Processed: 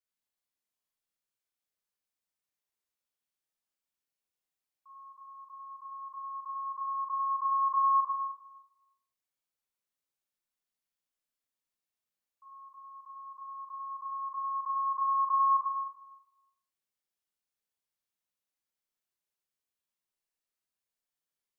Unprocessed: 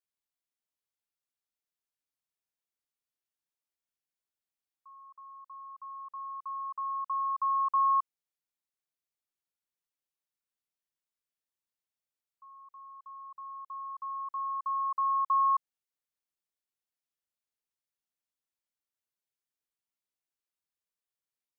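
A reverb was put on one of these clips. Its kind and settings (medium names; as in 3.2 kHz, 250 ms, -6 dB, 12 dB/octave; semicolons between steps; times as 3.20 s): Schroeder reverb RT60 0.99 s, combs from 30 ms, DRR -3.5 dB; trim -4 dB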